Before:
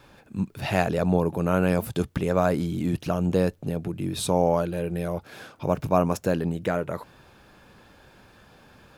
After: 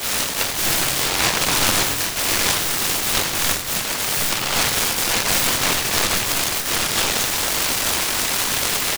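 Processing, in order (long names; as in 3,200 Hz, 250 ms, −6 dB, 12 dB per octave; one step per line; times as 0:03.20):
Butterworth high-pass 930 Hz 96 dB per octave
high-shelf EQ 2,800 Hz +11 dB
downward compressor 4 to 1, threshold −44 dBFS, peak gain reduction 21.5 dB
sine wavefolder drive 12 dB, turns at −32 dBFS
double-tracking delay 21 ms −3 dB
slap from a distant wall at 180 metres, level −9 dB
convolution reverb RT60 0.85 s, pre-delay 12 ms, DRR −5.5 dB
short delay modulated by noise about 1,500 Hz, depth 0.35 ms
level +7.5 dB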